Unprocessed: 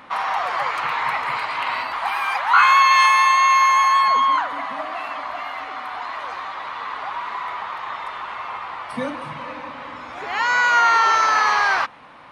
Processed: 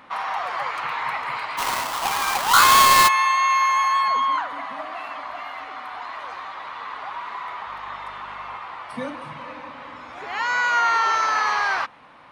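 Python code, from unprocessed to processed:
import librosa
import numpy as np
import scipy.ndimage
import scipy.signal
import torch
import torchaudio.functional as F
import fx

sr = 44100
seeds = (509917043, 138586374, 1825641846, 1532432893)

y = fx.halfwave_hold(x, sr, at=(1.57, 3.07), fade=0.02)
y = fx.dmg_buzz(y, sr, base_hz=50.0, harmonics=5, level_db=-51.0, tilt_db=-3, odd_only=False, at=(7.66, 8.55), fade=0.02)
y = y * 10.0 ** (-4.0 / 20.0)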